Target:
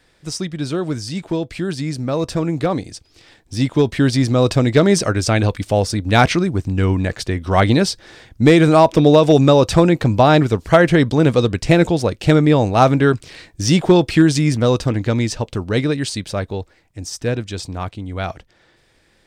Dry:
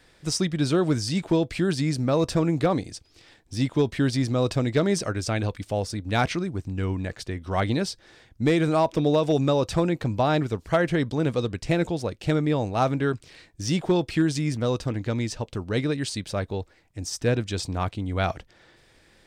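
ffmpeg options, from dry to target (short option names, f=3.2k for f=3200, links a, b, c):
-af "dynaudnorm=f=240:g=31:m=13.5dB"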